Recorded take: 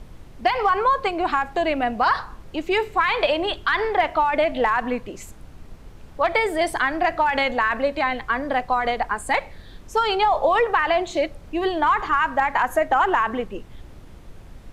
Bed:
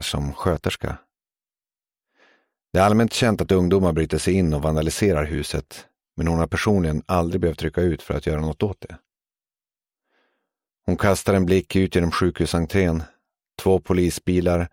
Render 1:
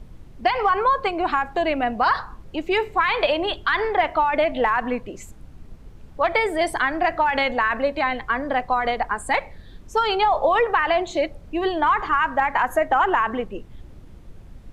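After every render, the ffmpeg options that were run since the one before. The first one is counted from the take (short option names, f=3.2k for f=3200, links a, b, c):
-af "afftdn=nr=6:nf=-44"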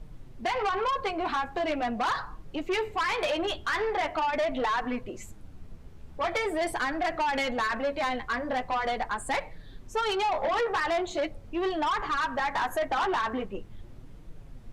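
-af "flanger=delay=6.2:depth=7:regen=-19:speed=0.42:shape=triangular,asoftclip=type=tanh:threshold=-23.5dB"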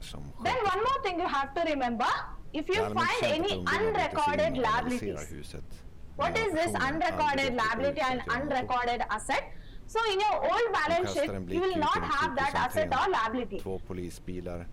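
-filter_complex "[1:a]volume=-18.5dB[a];[0:a][a]amix=inputs=2:normalize=0"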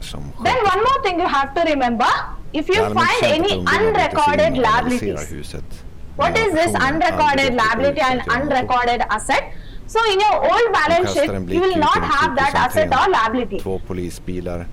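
-af "volume=12dB"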